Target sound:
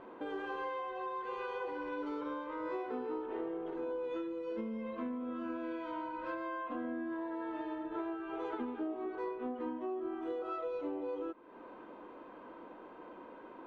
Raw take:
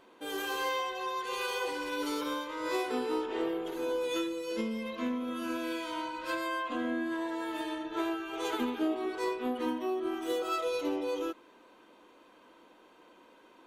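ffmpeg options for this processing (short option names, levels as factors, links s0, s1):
-af "lowpass=1400,acompressor=threshold=0.00316:ratio=3,volume=2.66"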